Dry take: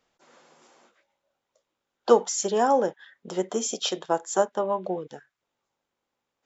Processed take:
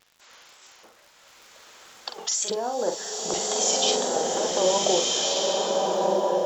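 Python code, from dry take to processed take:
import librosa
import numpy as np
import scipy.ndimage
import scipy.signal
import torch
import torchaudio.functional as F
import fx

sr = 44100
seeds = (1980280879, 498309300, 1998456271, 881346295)

y = fx.high_shelf(x, sr, hz=4600.0, db=5.5)
y = fx.over_compress(y, sr, threshold_db=-29.0, ratio=-1.0)
y = fx.filter_lfo_bandpass(y, sr, shape='square', hz=0.6, low_hz=640.0, high_hz=3500.0, q=0.73)
y = fx.dmg_crackle(y, sr, seeds[0], per_s=80.0, level_db=-45.0)
y = fx.wow_flutter(y, sr, seeds[1], rate_hz=2.1, depth_cents=93.0)
y = fx.doubler(y, sr, ms=45.0, db=-7.5)
y = fx.rev_bloom(y, sr, seeds[2], attack_ms=1490, drr_db=-3.5)
y = y * 10.0 ** (4.5 / 20.0)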